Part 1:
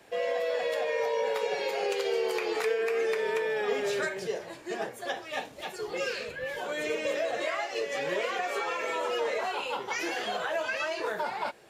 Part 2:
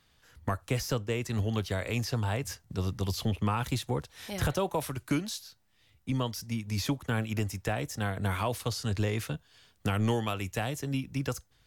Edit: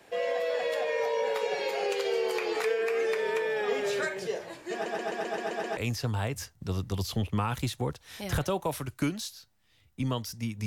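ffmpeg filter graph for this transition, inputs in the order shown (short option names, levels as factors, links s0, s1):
-filter_complex "[0:a]apad=whole_dur=10.66,atrim=end=10.66,asplit=8[s0][s1][s2][s3][s4][s5][s6][s7];[s0]atrim=end=4.862[s8];[s1]atrim=start=4.728:end=4.862[s9];[s2]atrim=start=4.728:end=4.862[s10];[s3]atrim=start=4.728:end=4.862[s11];[s4]atrim=start=4.728:end=4.862[s12];[s5]atrim=start=4.728:end=4.862[s13];[s6]atrim=start=4.728:end=4.862[s14];[s7]atrim=start=4.728:end=4.862[s15];[1:a]atrim=start=1.858:end=6.75[s16];[s8][s9]acrossfade=d=0.004:c1=hsin:c2=hsin[s17];[s17][s10]acrossfade=d=0.004:c1=hsin:c2=hsin[s18];[s18][s11]acrossfade=d=0.004:c1=hsin:c2=hsin[s19];[s19][s12]acrossfade=d=0.004:c1=hsin:c2=hsin[s20];[s20][s13]acrossfade=d=0.004:c1=hsin:c2=hsin[s21];[s21][s14]acrossfade=d=0.004:c1=hsin:c2=hsin[s22];[s22][s15]acrossfade=d=0.004:c1=hsin:c2=hsin[s23];[s23][s16]acrossfade=d=0.004:c1=hsin:c2=hsin"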